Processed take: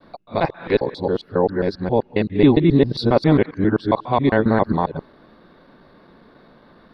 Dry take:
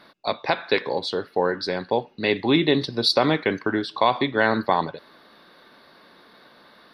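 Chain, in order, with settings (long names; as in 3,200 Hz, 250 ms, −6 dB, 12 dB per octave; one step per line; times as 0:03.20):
reversed piece by piece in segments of 135 ms
spectral tilt −4 dB per octave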